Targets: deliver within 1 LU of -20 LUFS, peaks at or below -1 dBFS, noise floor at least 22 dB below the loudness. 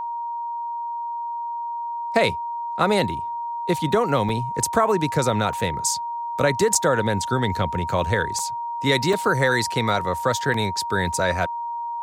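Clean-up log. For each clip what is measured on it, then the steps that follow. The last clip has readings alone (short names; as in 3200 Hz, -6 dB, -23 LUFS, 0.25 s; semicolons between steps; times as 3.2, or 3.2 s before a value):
dropouts 6; longest dropout 3.2 ms; steady tone 940 Hz; tone level -26 dBFS; loudness -23.0 LUFS; peak -6.0 dBFS; loudness target -20.0 LUFS
-> interpolate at 4.29/5.53/6.75/8.39/9.13/10.54, 3.2 ms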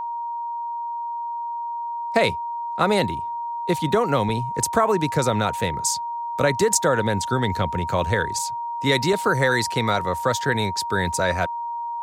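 dropouts 0; steady tone 940 Hz; tone level -26 dBFS
-> notch 940 Hz, Q 30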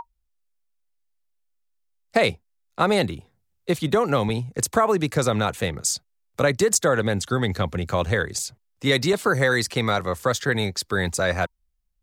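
steady tone none; loudness -23.0 LUFS; peak -6.5 dBFS; loudness target -20.0 LUFS
-> gain +3 dB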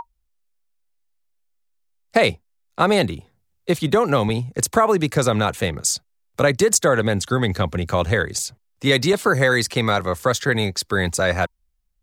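loudness -20.0 LUFS; peak -3.5 dBFS; noise floor -68 dBFS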